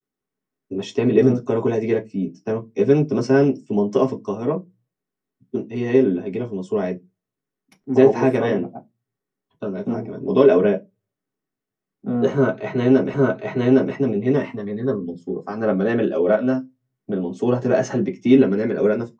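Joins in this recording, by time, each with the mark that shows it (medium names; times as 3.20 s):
13.14 s: repeat of the last 0.81 s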